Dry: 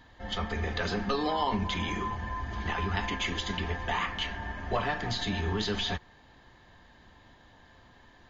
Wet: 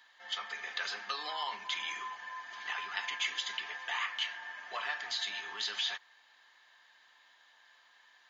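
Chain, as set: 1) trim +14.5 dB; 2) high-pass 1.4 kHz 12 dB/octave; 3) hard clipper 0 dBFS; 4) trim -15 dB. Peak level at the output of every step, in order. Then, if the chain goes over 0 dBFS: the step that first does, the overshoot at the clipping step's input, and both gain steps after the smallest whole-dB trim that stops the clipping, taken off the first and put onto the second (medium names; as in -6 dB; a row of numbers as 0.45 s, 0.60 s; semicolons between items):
-1.0 dBFS, -3.5 dBFS, -3.5 dBFS, -18.5 dBFS; nothing clips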